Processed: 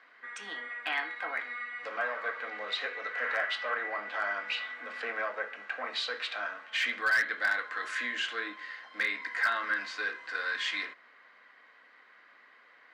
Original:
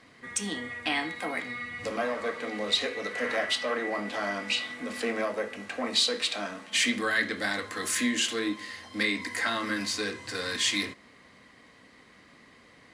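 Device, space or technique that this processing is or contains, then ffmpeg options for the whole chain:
megaphone: -af "highpass=690,lowpass=2800,equalizer=f=1500:t=o:w=0.42:g=9,asoftclip=type=hard:threshold=0.119,volume=0.75"

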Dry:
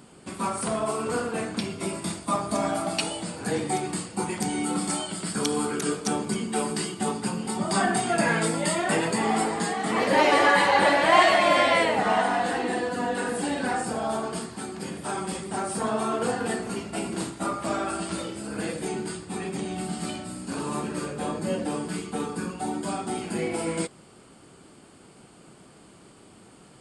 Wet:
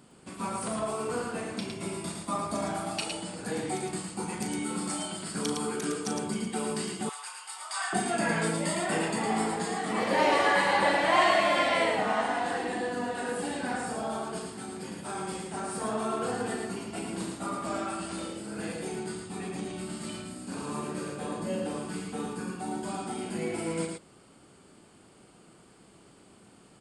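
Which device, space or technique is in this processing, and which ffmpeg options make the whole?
slapback doubling: -filter_complex "[0:a]asplit=3[s0][s1][s2];[s1]adelay=37,volume=0.398[s3];[s2]adelay=110,volume=0.631[s4];[s0][s3][s4]amix=inputs=3:normalize=0,asettb=1/sr,asplit=3[s5][s6][s7];[s5]atrim=end=7.094[s8];[s6]atrim=start=7.09:end=7.93,asetpts=PTS-STARTPTS,afade=t=in:d=0.004:c=qsin,afade=t=out:st=0.836:d=0.004:c=qsin,highpass=f=980:w=0.5412,highpass=f=980:w=1.3066[s9];[s7]atrim=start=7.926[s10];[s8][s9]acrossfade=d=0.004:c1=hsin:c2=qsin[s11];[s11][s10]acrossfade=d=0.004:c1=qsin:c2=hsin,volume=0.473"

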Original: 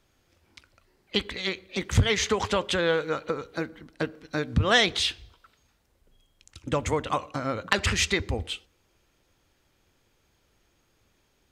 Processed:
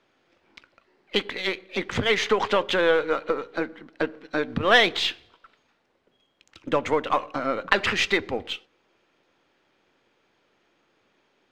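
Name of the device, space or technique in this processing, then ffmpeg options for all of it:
crystal radio: -af "highpass=250,lowpass=3300,aeval=exprs='if(lt(val(0),0),0.708*val(0),val(0))':c=same,volume=2"

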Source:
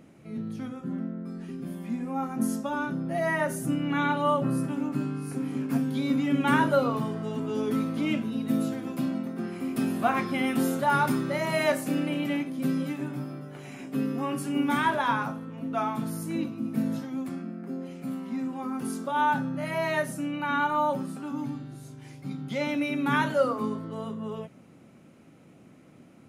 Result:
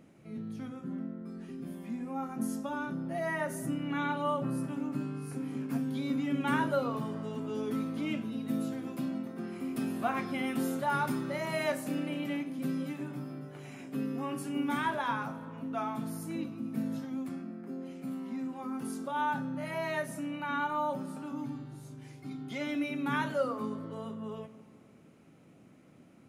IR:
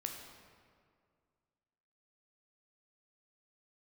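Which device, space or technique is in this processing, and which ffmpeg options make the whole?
ducked reverb: -filter_complex "[0:a]asplit=3[s0][s1][s2];[1:a]atrim=start_sample=2205[s3];[s1][s3]afir=irnorm=-1:irlink=0[s4];[s2]apad=whole_len=1159105[s5];[s4][s5]sidechaincompress=threshold=0.0251:ratio=8:attack=16:release=223,volume=0.473[s6];[s0][s6]amix=inputs=2:normalize=0,asettb=1/sr,asplit=3[s7][s8][s9];[s7]atrim=end=22.174[s10];[s8]atrim=start=22.17:end=22.84,asetpts=PTS-STARTPTS,afade=t=in:d=0.004:c=qsin,afade=t=out:st=0.666:d=0.004:c=qsin,aecho=1:1:2.8:0.57,atrim=end_sample=29547[s11];[s9]atrim=start=22.836[s12];[s10][s11]acrossfade=d=0.004:c1=hsin:c2=qsin[s13];[s13][s12]acrossfade=d=0.004:c1=qsin:c2=hsin,volume=0.422"

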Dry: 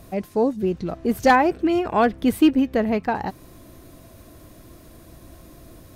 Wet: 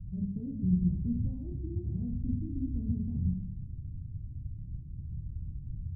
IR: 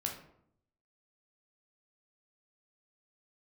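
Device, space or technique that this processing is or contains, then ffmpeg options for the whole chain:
club heard from the street: -filter_complex "[0:a]alimiter=limit=0.168:level=0:latency=1:release=67,lowpass=f=140:w=0.5412,lowpass=f=140:w=1.3066[s0];[1:a]atrim=start_sample=2205[s1];[s0][s1]afir=irnorm=-1:irlink=0,volume=2.24"

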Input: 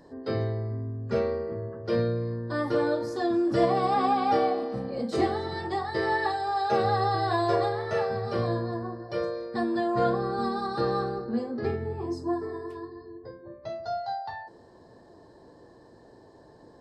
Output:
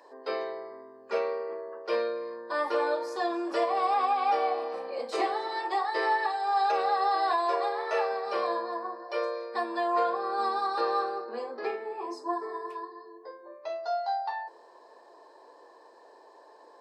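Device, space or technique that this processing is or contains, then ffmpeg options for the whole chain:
laptop speaker: -af "highpass=f=430:w=0.5412,highpass=f=430:w=1.3066,equalizer=f=1000:t=o:w=0.47:g=8,equalizer=f=2500:t=o:w=0.31:g=9,alimiter=limit=0.133:level=0:latency=1:release=345"

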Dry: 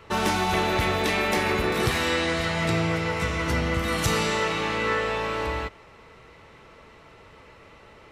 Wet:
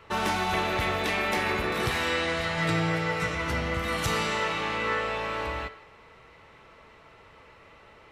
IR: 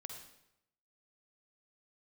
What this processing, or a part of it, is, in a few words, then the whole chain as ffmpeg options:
filtered reverb send: -filter_complex "[0:a]asettb=1/sr,asplit=3[s0][s1][s2];[s0]atrim=end=2.574[s3];[s1]atrim=start=2.57:end=3.35,asetpts=PTS-STARTPTS,afade=t=in:d=0.004:c=qsin,afade=t=out:st=0.776:d=0.004:c=qsin,aecho=1:1:6.6:0.69,atrim=end_sample=34398[s4];[s2]atrim=start=3.346[s5];[s3][s4]acrossfade=d=0.004:c1=hsin:c2=qsin[s6];[s6][s5]acrossfade=d=0.004:c1=qsin:c2=hsin,asplit=2[s7][s8];[s8]highpass=470,lowpass=4400[s9];[1:a]atrim=start_sample=2205[s10];[s9][s10]afir=irnorm=-1:irlink=0,volume=0.841[s11];[s7][s11]amix=inputs=2:normalize=0,volume=0.562"

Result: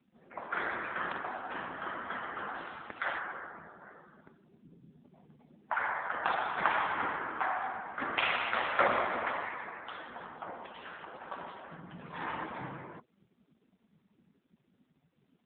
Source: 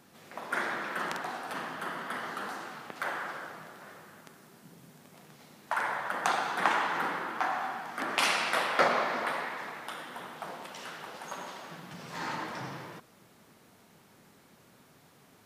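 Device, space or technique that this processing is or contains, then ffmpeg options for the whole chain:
mobile call with aggressive noise cancelling: -filter_complex "[0:a]asettb=1/sr,asplit=3[s0][s1][s2];[s0]atrim=end=2.544[s3];[s1]atrim=start=2.54:end=3.19,asetpts=PTS-STARTPTS,afade=t=in:d=0.004:c=qsin,afade=t=out:st=0.646:d=0.004:c=qsin,aemphasis=mode=production:type=75kf[s4];[s2]atrim=start=3.186[s5];[s3][s4]acrossfade=d=0.004:c1=hsin:c2=qsin[s6];[s6][s5]acrossfade=d=0.004:c1=qsin:c2=hsin,highpass=110,afftdn=nr=18:nf=-49" -ar 8000 -c:a libopencore_amrnb -b:a 7950

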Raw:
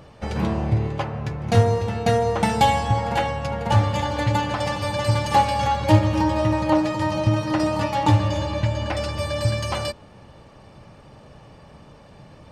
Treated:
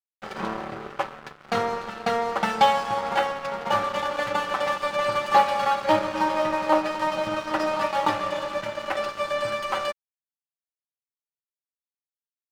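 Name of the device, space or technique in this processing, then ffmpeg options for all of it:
pocket radio on a weak battery: -af "highpass=340,lowpass=4400,aecho=1:1:5.2:0.46,aeval=exprs='sgn(val(0))*max(abs(val(0))-0.0188,0)':c=same,equalizer=f=1300:t=o:w=0.52:g=7.5"

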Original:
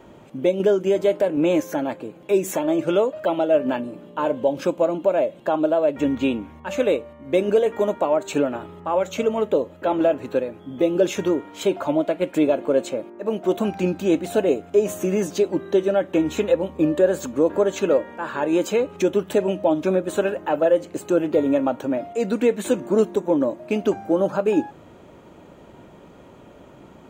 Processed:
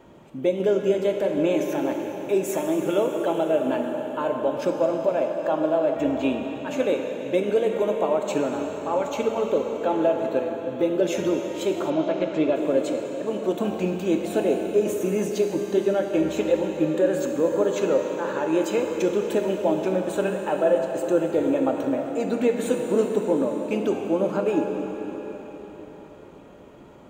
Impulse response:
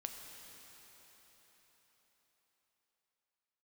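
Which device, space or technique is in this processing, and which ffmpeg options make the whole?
cathedral: -filter_complex "[1:a]atrim=start_sample=2205[s0];[0:a][s0]afir=irnorm=-1:irlink=0,asettb=1/sr,asplit=3[s1][s2][s3];[s1]atrim=end=11.904[s4];[s2]atrim=start=11.9:end=12.56,asetpts=PTS-STARTPTS,afade=t=in:d=0.004:c=qsin,afade=t=out:st=0.656:d=0.004:c=qsin,lowpass=f=5700:w=0.5412,lowpass=f=5700:w=1.3066[s5];[s3]atrim=start=12.556[s6];[s4][s5]acrossfade=d=0.004:c1=hsin:c2=qsin[s7];[s7][s6]acrossfade=d=0.004:c1=qsin:c2=hsin"

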